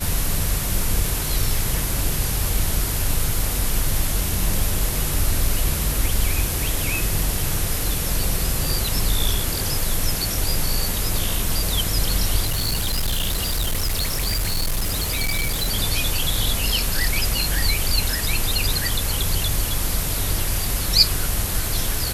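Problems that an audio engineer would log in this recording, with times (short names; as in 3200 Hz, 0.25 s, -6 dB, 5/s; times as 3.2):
12.45–15.69 clipped -18 dBFS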